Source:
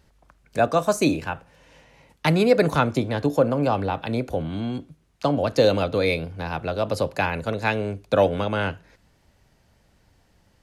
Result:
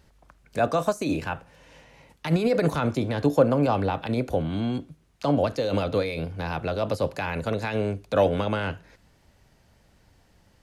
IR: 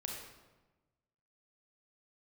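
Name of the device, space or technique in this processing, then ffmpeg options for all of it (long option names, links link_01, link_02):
de-esser from a sidechain: -filter_complex "[0:a]asplit=2[link_01][link_02];[link_02]highpass=4500,apad=whole_len=468646[link_03];[link_01][link_03]sidechaincompress=threshold=-44dB:ratio=4:attack=3.8:release=37,volume=1dB"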